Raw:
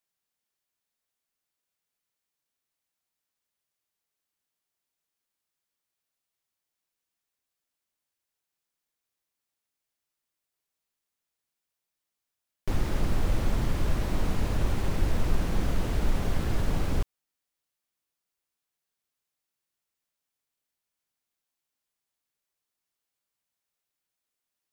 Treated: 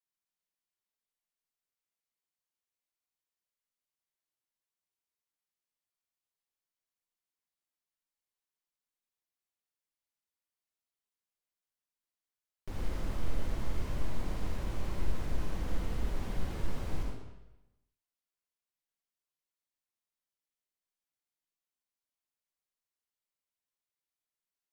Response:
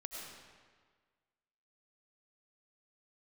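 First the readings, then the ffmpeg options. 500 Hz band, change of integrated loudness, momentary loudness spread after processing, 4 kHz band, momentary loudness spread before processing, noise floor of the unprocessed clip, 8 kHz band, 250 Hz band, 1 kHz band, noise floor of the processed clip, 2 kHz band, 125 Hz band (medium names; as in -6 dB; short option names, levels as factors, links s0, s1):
-8.5 dB, -9.0 dB, 5 LU, -9.0 dB, 3 LU, under -85 dBFS, -9.5 dB, -9.5 dB, -8.5 dB, under -85 dBFS, -9.0 dB, -9.0 dB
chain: -filter_complex "[1:a]atrim=start_sample=2205,asetrate=70560,aresample=44100[s0];[0:a][s0]afir=irnorm=-1:irlink=0,volume=0.708"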